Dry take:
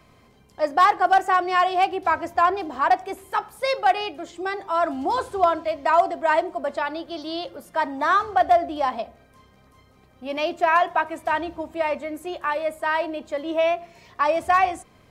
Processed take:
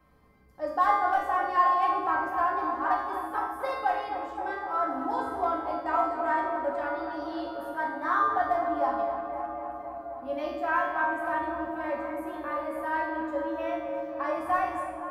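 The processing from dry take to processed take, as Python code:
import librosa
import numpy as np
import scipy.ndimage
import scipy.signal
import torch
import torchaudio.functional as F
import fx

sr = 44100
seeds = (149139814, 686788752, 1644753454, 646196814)

p1 = fx.band_shelf(x, sr, hz=4300.0, db=-9.5, octaves=2.3)
p2 = fx.comb_fb(p1, sr, f0_hz=63.0, decay_s=0.77, harmonics='odd', damping=0.0, mix_pct=90)
p3 = p2 + fx.echo_tape(p2, sr, ms=258, feedback_pct=87, wet_db=-7.5, lp_hz=2100.0, drive_db=17.0, wow_cents=24, dry=0)
p4 = fx.room_shoebox(p3, sr, seeds[0], volume_m3=700.0, walls='furnished', distance_m=2.1)
y = p4 * 10.0 ** (4.5 / 20.0)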